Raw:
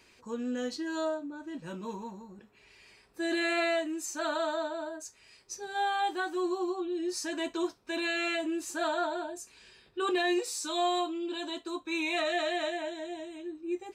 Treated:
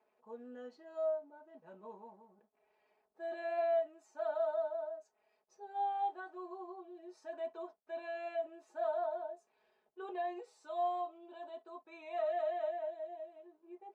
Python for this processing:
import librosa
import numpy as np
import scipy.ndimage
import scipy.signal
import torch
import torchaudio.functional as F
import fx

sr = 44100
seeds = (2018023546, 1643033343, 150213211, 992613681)

y = fx.backlash(x, sr, play_db=-57.0)
y = fx.bandpass_q(y, sr, hz=700.0, q=3.0)
y = y + 0.66 * np.pad(y, (int(4.7 * sr / 1000.0), 0))[:len(y)]
y = y * 10.0 ** (-4.0 / 20.0)